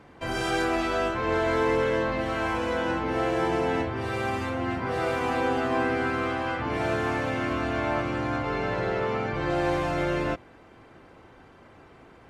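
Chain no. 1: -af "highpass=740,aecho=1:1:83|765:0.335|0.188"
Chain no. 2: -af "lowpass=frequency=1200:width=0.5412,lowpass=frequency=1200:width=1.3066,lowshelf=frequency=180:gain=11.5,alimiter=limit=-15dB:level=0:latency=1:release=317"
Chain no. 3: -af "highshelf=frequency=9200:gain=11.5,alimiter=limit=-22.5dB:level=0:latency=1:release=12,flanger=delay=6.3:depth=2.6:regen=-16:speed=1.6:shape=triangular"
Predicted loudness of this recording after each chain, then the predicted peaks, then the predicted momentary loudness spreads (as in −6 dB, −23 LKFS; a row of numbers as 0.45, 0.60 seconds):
−30.5, −26.5, −34.0 LKFS; −17.0, −15.0, −23.0 dBFS; 5, 2, 1 LU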